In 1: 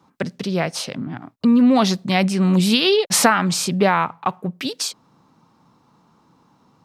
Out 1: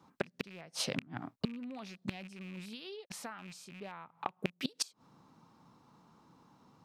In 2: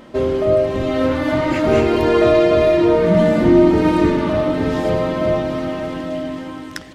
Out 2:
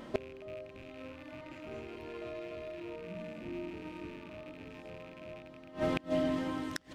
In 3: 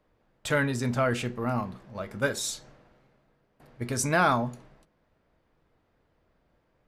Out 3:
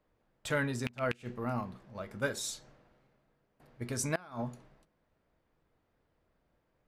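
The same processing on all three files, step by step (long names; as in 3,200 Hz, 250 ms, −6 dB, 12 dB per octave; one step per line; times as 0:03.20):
loose part that buzzes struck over −24 dBFS, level −12 dBFS
gate with flip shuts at −13 dBFS, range −24 dB
level −6 dB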